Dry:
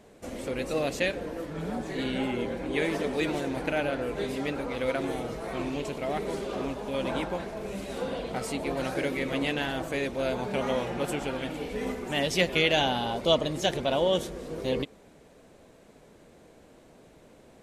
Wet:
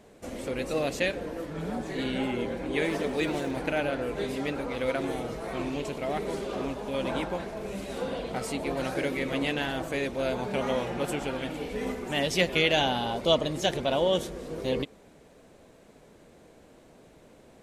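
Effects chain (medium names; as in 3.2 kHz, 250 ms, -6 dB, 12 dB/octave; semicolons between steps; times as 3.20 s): 2.83–3.57 s: crackle 110 per s -42 dBFS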